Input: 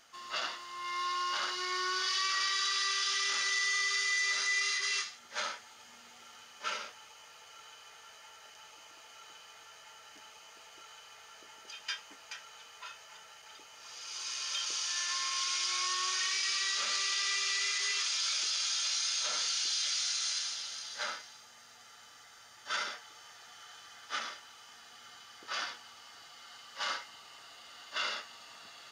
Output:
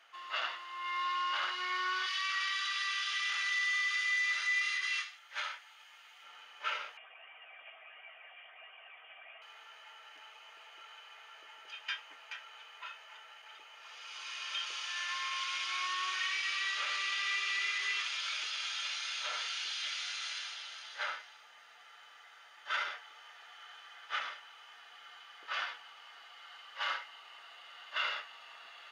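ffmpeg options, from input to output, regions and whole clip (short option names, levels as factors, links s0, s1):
-filter_complex "[0:a]asettb=1/sr,asplit=3[s0][s1][s2];[s0]atrim=end=2.064[s3];[s1]atrim=start=2.06:end=6.24,asetpts=PTS-STARTPTS,afade=t=in:d=0.004:c=qsin,afade=t=out:st=4.176:d=0.004:c=qsin,highpass=f=1400:p=1,highshelf=f=10000:g=6.5[s4];[s2]atrim=start=6.236[s5];[s3][s4]acrossfade=d=0.004:c1=hsin:c2=qsin[s6];[s6][s5]acrossfade=d=0.004:c1=qsin:c2=hsin,asettb=1/sr,asplit=3[s7][s8][s9];[s7]atrim=end=6.974[s10];[s8]atrim=start=6.97:end=9.42,asetpts=PTS-STARTPTS,afade=t=in:d=0.004:c=qsin,afade=t=out:st=2.446:d=0.004:c=qsin,highpass=f=260:p=1,aphaser=in_gain=1:out_gain=1:delay=1.5:decay=0.39:speed=1.4:type=triangular,lowpass=f=3100:t=q:w=0.5098,lowpass=f=3100:t=q:w=0.6013,lowpass=f=3100:t=q:w=0.9,lowpass=f=3100:t=q:w=2.563,afreqshift=-3700[s11];[s9]atrim=start=9.416[s12];[s10][s11]acrossfade=d=0.004:c1=hsin:c2=qsin[s13];[s13][s12]acrossfade=d=0.004:c1=qsin:c2=hsin,highpass=580,highshelf=f=3900:t=q:w=1.5:g=-10.5,bandreject=f=7500:w=19"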